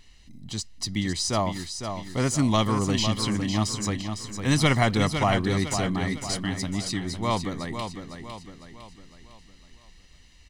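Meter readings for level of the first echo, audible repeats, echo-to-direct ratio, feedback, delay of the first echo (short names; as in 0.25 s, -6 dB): -7.5 dB, 4, -6.5 dB, 45%, 0.505 s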